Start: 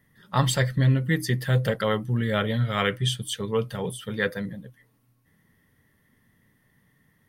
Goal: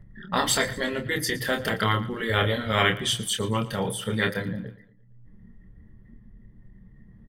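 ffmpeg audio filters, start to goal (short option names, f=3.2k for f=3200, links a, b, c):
-filter_complex "[0:a]anlmdn=0.0251,afftfilt=real='re*lt(hypot(re,im),0.316)':imag='im*lt(hypot(re,im),0.316)':win_size=1024:overlap=0.75,acompressor=mode=upward:threshold=-31dB:ratio=2.5,asplit=2[a][b];[b]adelay=27,volume=-6dB[c];[a][c]amix=inputs=2:normalize=0,asplit=2[d][e];[e]aecho=0:1:115|230|345|460:0.126|0.0592|0.0278|0.0131[f];[d][f]amix=inputs=2:normalize=0,volume=4dB"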